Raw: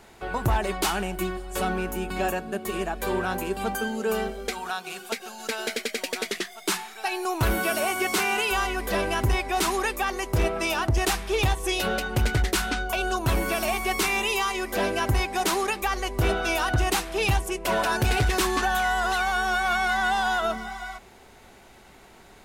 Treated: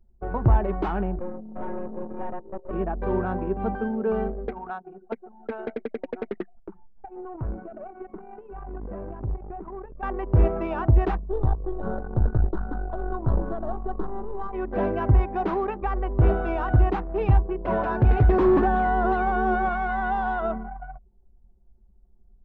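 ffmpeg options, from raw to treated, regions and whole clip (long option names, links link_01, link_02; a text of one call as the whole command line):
ffmpeg -i in.wav -filter_complex "[0:a]asettb=1/sr,asplit=3[link_01][link_02][link_03];[link_01]atrim=end=1.194[link_04];[link_02]atrim=start=1.19:end=2.71,asetpts=PTS-STARTPTS,afade=type=in:duration=0.004:curve=qsin,afade=type=out:start_time=1.516:duration=0.004:curve=qsin,afreqshift=170,aeval=exprs='(tanh(28.2*val(0)+0.8)-tanh(0.8))/28.2':channel_layout=same[link_05];[link_03]atrim=start=2.706[link_06];[link_04][link_05]acrossfade=duration=0.004:curve1=hsin:curve2=qsin[link_07];[link_07][link_06]acrossfade=duration=0.004:curve1=qsin:curve2=hsin,asettb=1/sr,asplit=3[link_08][link_09][link_10];[link_08]atrim=end=6.554[link_11];[link_09]atrim=start=6.55:end=10.03,asetpts=PTS-STARTPTS,afade=type=in:duration=0.004:curve=qsin,afade=type=out:start_time=3.476:duration=0.004:curve=qsin,acrusher=bits=6:dc=4:mix=0:aa=0.000001,acompressor=threshold=-33dB:ratio=3:attack=3.2:release=140:knee=1:detection=peak,aeval=exprs='(tanh(20*val(0)+0.3)-tanh(0.3))/20':channel_layout=same[link_12];[link_10]atrim=start=10.026[link_13];[link_11][link_12]acrossfade=duration=0.004:curve1=hsin:curve2=qsin[link_14];[link_14][link_13]acrossfade=duration=0.004:curve1=qsin:curve2=hsin,asettb=1/sr,asplit=3[link_15][link_16][link_17];[link_15]atrim=end=11.174[link_18];[link_16]atrim=start=11.17:end=14.53,asetpts=PTS-STARTPTS,afade=type=in:duration=0.004:curve=qsin,afade=type=out:start_time=3.356:duration=0.004:curve=qsin,highshelf=frequency=3400:gain=6,aeval=exprs='(tanh(11.2*val(0)+0.75)-tanh(0.75))/11.2':channel_layout=same,asuperstop=centerf=2400:order=4:qfactor=1.1[link_19];[link_17]atrim=start=14.526[link_20];[link_18][link_19]acrossfade=duration=0.004:curve1=hsin:curve2=qsin[link_21];[link_21][link_20]acrossfade=duration=0.004:curve1=qsin:curve2=hsin,asettb=1/sr,asplit=3[link_22][link_23][link_24];[link_22]atrim=end=18.294[link_25];[link_23]atrim=start=18.29:end=19.69,asetpts=PTS-STARTPTS,afade=type=in:duration=0.004:curve=qsin,afade=type=out:start_time=1.396:duration=0.004:curve=qsin,equalizer=frequency=300:width_type=o:width=1.6:gain=12,aeval=exprs='0.178*(abs(mod(val(0)/0.178+3,4)-2)-1)':channel_layout=same[link_26];[link_24]atrim=start=19.686[link_27];[link_25][link_26]acrossfade=duration=0.004:curve1=hsin:curve2=qsin[link_28];[link_28][link_27]acrossfade=duration=0.004:curve1=qsin:curve2=hsin,lowpass=1100,lowshelf=frequency=220:gain=7.5,anlmdn=10" out.wav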